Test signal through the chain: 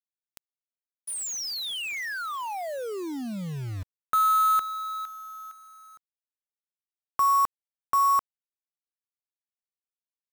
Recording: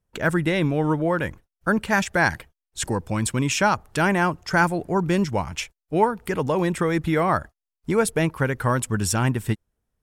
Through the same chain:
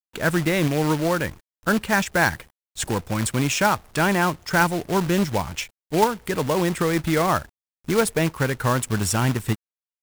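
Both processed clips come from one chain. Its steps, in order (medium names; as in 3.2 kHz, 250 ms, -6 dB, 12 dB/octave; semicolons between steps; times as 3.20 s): companded quantiser 4-bit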